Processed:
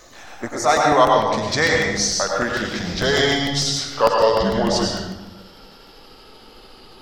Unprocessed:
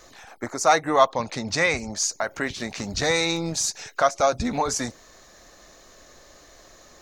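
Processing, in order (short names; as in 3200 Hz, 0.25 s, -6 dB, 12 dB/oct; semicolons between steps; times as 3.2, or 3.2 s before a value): gliding pitch shift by -6 st starting unshifted; reverb RT60 1.1 s, pre-delay 86 ms, DRR -0.5 dB; crackling interface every 0.15 s, samples 64, repeat, from 0.77; gain +3.5 dB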